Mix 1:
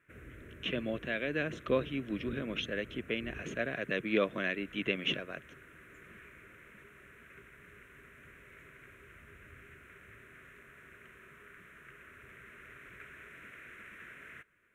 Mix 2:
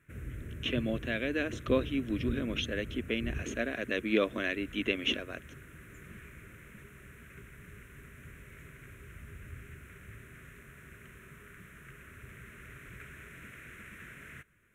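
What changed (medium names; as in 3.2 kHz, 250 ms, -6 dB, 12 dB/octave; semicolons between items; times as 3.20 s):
speech: add brick-wall FIR high-pass 210 Hz; master: add tone controls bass +12 dB, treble +9 dB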